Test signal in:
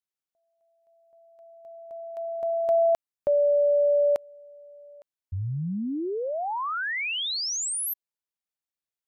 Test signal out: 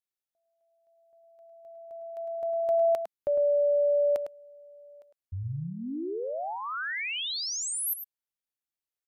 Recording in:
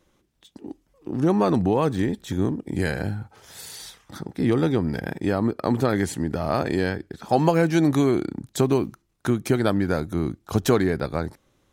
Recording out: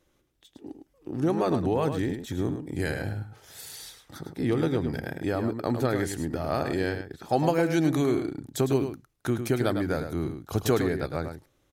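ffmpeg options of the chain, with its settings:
-filter_complex "[0:a]equalizer=f=200:t=o:w=0.33:g=-7,equalizer=f=1k:t=o:w=0.33:g=-4,equalizer=f=12.5k:t=o:w=0.33:g=5,asplit=2[a][b];[b]adelay=105,volume=-8dB,highshelf=f=4k:g=-2.36[c];[a][c]amix=inputs=2:normalize=0,volume=-4dB"

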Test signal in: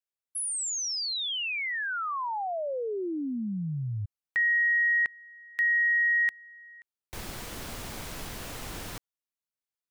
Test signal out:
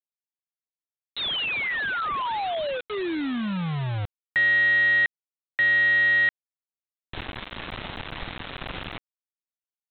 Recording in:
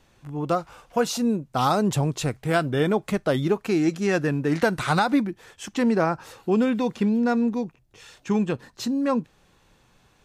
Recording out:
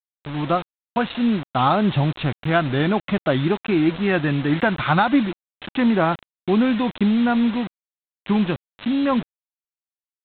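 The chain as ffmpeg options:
-af "equalizer=f=460:t=o:w=0.25:g=-10.5,aresample=8000,acrusher=bits=5:mix=0:aa=0.000001,aresample=44100,volume=4dB"

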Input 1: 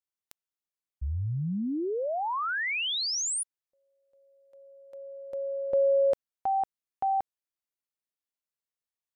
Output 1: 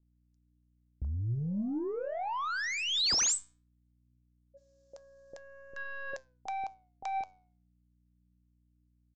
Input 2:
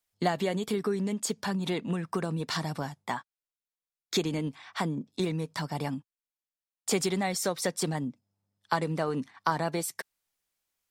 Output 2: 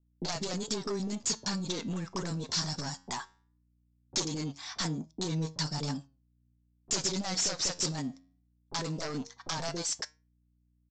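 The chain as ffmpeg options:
-filter_complex "[0:a]agate=range=-49dB:threshold=-55dB:ratio=16:release=88:detection=peak,aeval=exprs='0.299*(cos(1*acos(clip(val(0)/0.299,-1,1)))-cos(1*PI/2))+0.133*(cos(3*acos(clip(val(0)/0.299,-1,1)))-cos(3*PI/2))+0.0133*(cos(6*acos(clip(val(0)/0.299,-1,1)))-cos(6*PI/2))+0.0668*(cos(7*acos(clip(val(0)/0.299,-1,1)))-cos(7*PI/2))':c=same,acompressor=threshold=-34dB:ratio=2.5:release=270:detection=rms,aeval=exprs='val(0)+0.000355*(sin(2*PI*60*n/s)+sin(2*PI*2*60*n/s)/2+sin(2*PI*3*60*n/s)/3+sin(2*PI*4*60*n/s)/4+sin(2*PI*5*60*n/s)/5)':c=same,highshelf=f=3.8k:t=q:w=1.5:g=12.5,aresample=16000,asoftclip=type=tanh:threshold=-27dB,aresample=44100,flanger=delay=6.2:depth=5.1:regen=86:speed=0.19:shape=sinusoidal,acrossover=split=560[a][b];[b]adelay=30[c];[a][c]amix=inputs=2:normalize=0,volume=5dB"

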